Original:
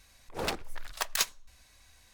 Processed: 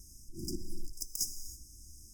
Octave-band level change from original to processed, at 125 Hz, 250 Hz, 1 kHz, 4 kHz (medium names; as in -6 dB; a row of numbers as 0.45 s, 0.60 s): +1.0 dB, +1.0 dB, under -40 dB, -9.0 dB